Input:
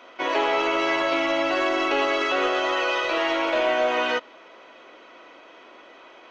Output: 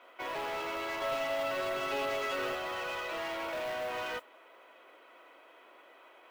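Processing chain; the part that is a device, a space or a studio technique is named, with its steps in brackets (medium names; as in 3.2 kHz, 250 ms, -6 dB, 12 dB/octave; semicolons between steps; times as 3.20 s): carbon microphone (band-pass 370–3400 Hz; saturation -24.5 dBFS, distortion -11 dB; modulation noise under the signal 23 dB); 1.01–2.55 s: comb 7.5 ms, depth 94%; trim -8.5 dB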